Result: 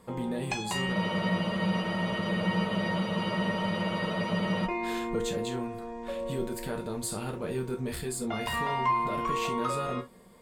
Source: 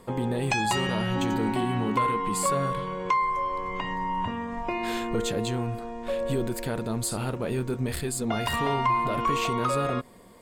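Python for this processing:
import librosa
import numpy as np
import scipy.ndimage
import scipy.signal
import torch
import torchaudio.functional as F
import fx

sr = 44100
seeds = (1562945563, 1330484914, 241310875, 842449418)

y = fx.rev_gated(x, sr, seeds[0], gate_ms=90, shape='falling', drr_db=3.0)
y = fx.spec_freeze(y, sr, seeds[1], at_s=0.96, hold_s=3.69)
y = y * 10.0 ** (-6.0 / 20.0)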